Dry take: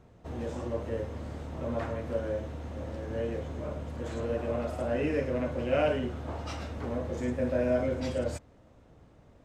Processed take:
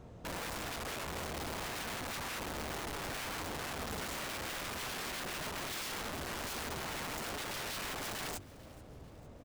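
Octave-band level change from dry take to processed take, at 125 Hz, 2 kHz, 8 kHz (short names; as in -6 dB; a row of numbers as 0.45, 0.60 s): -11.5 dB, +2.5 dB, n/a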